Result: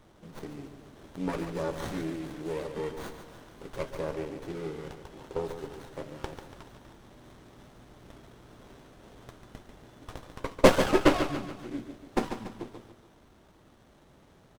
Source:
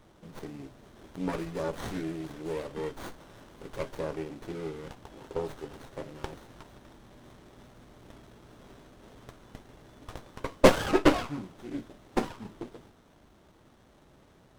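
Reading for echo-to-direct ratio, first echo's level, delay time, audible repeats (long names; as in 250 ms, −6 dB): −8.0 dB, −9.0 dB, 143 ms, 4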